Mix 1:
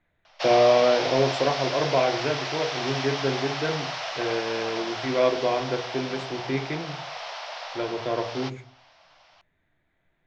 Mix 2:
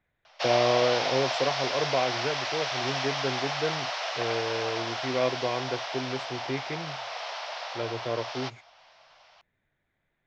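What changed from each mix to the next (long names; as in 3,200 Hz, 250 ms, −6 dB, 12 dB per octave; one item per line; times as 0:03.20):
reverb: off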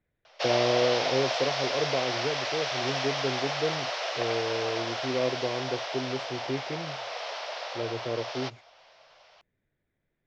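speech −6.5 dB
master: add low shelf with overshoot 610 Hz +6 dB, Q 1.5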